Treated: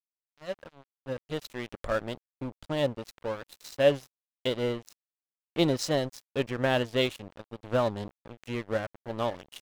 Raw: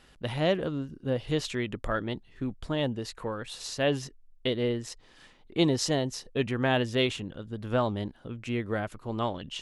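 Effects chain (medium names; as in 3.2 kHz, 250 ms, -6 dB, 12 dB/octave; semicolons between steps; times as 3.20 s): fade-in on the opening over 2.03 s; small resonant body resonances 560/4000 Hz, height 9 dB, ringing for 45 ms; crossover distortion -36 dBFS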